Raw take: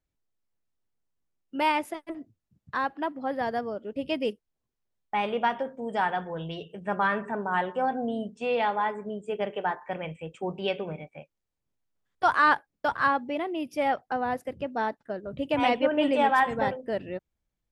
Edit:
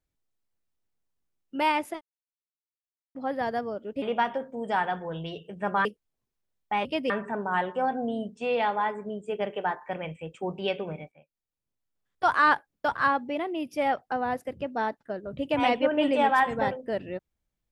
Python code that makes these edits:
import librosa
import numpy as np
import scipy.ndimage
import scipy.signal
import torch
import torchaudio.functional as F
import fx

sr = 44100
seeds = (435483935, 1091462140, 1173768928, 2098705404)

y = fx.edit(x, sr, fx.silence(start_s=2.01, length_s=1.14),
    fx.swap(start_s=4.02, length_s=0.25, other_s=5.27, other_length_s=1.83),
    fx.fade_in_from(start_s=11.12, length_s=1.25, floor_db=-15.0), tone=tone)